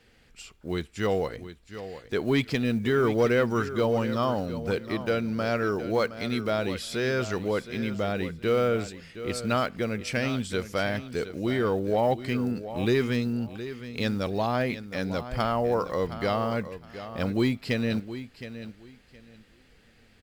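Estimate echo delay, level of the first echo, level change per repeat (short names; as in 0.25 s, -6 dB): 0.717 s, -12.5 dB, -13.5 dB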